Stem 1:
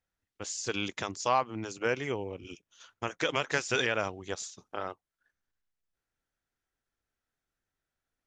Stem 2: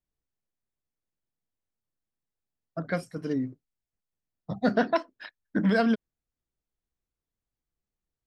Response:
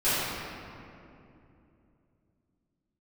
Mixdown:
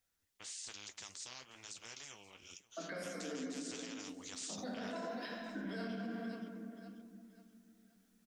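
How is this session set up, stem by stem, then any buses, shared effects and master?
0:04.01 −19 dB → 0:04.51 −12 dB, 0.00 s, no send, echo send −20.5 dB, every bin compressed towards the loudest bin 4 to 1
−7.5 dB, 0.00 s, send −10 dB, echo send −7 dB, downward compressor, threshold −30 dBFS, peak gain reduction 11.5 dB; Butterworth high-pass 180 Hz 96 dB per octave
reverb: on, RT60 2.8 s, pre-delay 3 ms
echo: repeating echo 531 ms, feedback 34%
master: high-shelf EQ 3,400 Hz +11.5 dB; flanger 1.1 Hz, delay 7.7 ms, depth 9 ms, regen −47%; brickwall limiter −34 dBFS, peak gain reduction 8.5 dB

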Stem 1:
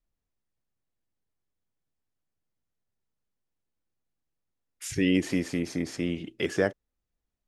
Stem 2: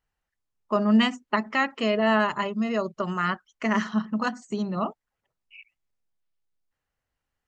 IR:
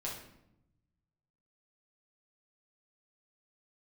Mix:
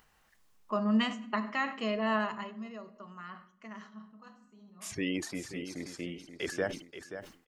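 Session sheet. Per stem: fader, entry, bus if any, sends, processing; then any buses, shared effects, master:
−5.0 dB, 0.00 s, no send, echo send −10.5 dB, reverb reduction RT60 1.9 s
0:02.15 −10 dB → 0:02.89 −22.5 dB, 0.00 s, send −9 dB, no echo send, upward compression, threshold −36 dBFS; hollow resonant body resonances 210/1,100 Hz, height 6 dB; automatic ducking −19 dB, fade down 1.20 s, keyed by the first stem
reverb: on, RT60 0.80 s, pre-delay 6 ms
echo: repeating echo 530 ms, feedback 21%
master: low-shelf EQ 290 Hz −7 dB; level that may fall only so fast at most 120 dB per second

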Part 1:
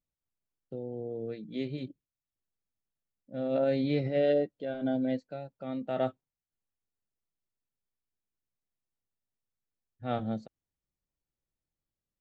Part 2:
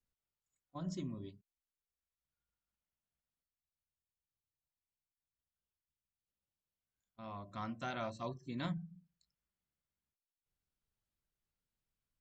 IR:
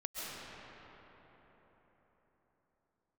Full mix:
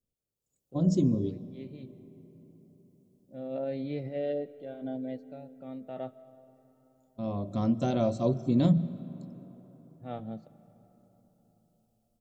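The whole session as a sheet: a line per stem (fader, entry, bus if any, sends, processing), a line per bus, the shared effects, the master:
−17.5 dB, 0.00 s, send −20 dB, high-shelf EQ 3,400 Hz −8.5 dB; automatic ducking −9 dB, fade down 1.50 s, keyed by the second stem
−0.5 dB, 0.00 s, send −18.5 dB, octave-band graphic EQ 125/250/500/1,000/2,000/4,000 Hz +5/+5/+8/−8/−12/−3 dB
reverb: on, RT60 4.4 s, pre-delay 95 ms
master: parametric band 1,500 Hz −5.5 dB 0.42 octaves; automatic gain control gain up to 11 dB

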